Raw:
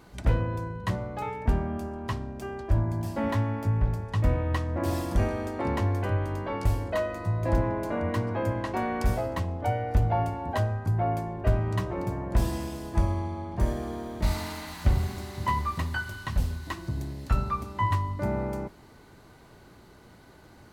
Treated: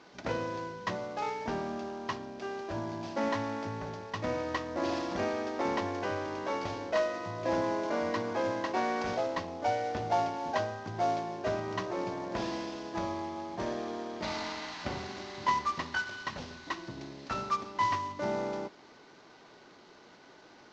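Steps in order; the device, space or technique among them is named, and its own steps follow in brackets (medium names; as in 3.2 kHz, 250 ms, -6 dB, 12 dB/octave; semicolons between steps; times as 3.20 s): early wireless headset (high-pass 290 Hz 12 dB/octave; CVSD coder 32 kbps)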